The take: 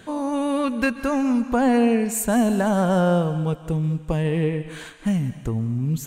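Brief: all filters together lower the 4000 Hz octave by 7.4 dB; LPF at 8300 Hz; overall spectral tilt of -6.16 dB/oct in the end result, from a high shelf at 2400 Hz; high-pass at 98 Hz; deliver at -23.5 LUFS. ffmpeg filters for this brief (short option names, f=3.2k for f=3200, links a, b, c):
-af "highpass=98,lowpass=8.3k,highshelf=f=2.4k:g=-4,equalizer=f=4k:t=o:g=-7,volume=-1dB"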